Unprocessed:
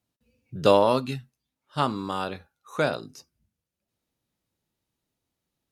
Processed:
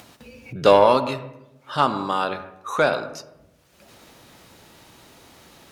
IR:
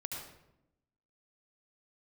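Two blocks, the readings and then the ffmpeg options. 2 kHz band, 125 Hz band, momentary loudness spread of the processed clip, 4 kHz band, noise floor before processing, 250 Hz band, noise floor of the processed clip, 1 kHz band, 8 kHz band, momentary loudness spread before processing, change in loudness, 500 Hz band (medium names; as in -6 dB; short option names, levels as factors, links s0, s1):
+7.0 dB, -0.5 dB, 19 LU, +4.0 dB, under -85 dBFS, +1.5 dB, -58 dBFS, +6.5 dB, +5.0 dB, 18 LU, +4.0 dB, +5.0 dB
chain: -filter_complex "[0:a]acompressor=mode=upward:threshold=0.0355:ratio=2.5,asplit=2[s0][s1];[s1]highpass=f=720:p=1,volume=3.98,asoftclip=type=tanh:threshold=0.668[s2];[s0][s2]amix=inputs=2:normalize=0,lowpass=f=4400:p=1,volume=0.501,asplit=2[s3][s4];[1:a]atrim=start_sample=2205,lowpass=2000[s5];[s4][s5]afir=irnorm=-1:irlink=0,volume=0.473[s6];[s3][s6]amix=inputs=2:normalize=0"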